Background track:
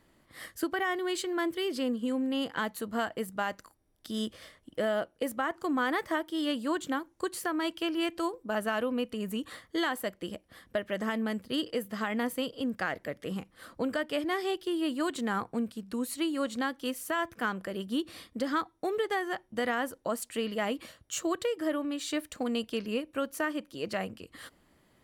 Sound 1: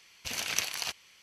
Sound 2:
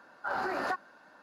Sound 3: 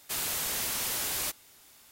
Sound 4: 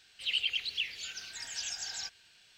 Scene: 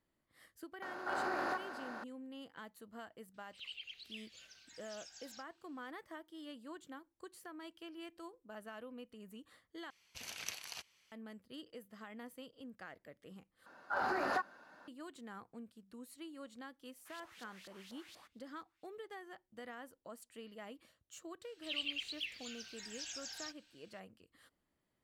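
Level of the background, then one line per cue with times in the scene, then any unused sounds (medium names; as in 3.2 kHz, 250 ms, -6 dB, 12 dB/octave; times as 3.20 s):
background track -19 dB
0.82 s: add 2 -8.5 dB + spectral levelling over time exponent 0.4
3.34 s: add 4 -17 dB
9.90 s: replace with 1 -13 dB
13.66 s: replace with 2 -2.5 dB
16.96 s: add 3 -15.5 dB + LFO band-pass saw up 4.2 Hz 530–4600 Hz
21.43 s: add 4 -8.5 dB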